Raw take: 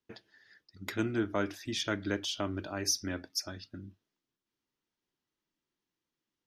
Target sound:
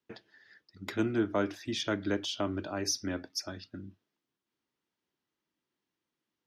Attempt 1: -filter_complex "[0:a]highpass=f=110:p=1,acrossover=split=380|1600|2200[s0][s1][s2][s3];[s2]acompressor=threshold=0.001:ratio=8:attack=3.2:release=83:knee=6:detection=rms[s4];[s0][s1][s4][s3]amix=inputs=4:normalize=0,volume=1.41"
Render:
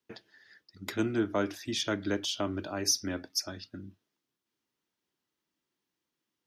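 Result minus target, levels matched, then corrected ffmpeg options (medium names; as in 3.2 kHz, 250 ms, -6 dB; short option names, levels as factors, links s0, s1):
8 kHz band +3.5 dB
-filter_complex "[0:a]highpass=f=110:p=1,highshelf=f=6700:g=-11.5,acrossover=split=380|1600|2200[s0][s1][s2][s3];[s2]acompressor=threshold=0.001:ratio=8:attack=3.2:release=83:knee=6:detection=rms[s4];[s0][s1][s4][s3]amix=inputs=4:normalize=0,volume=1.41"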